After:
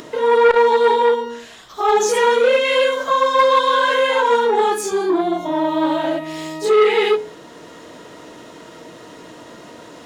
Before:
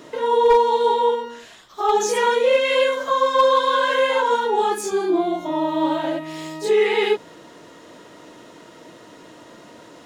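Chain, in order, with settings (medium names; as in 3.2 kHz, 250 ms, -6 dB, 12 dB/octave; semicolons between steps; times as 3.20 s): on a send at -13 dB: reverberation RT60 0.40 s, pre-delay 3 ms; on the sum: upward compressor, threshold -38 dBFS; peaking EQ 63 Hz +7.5 dB 0.28 oct; transformer saturation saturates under 1 kHz; trim +3.5 dB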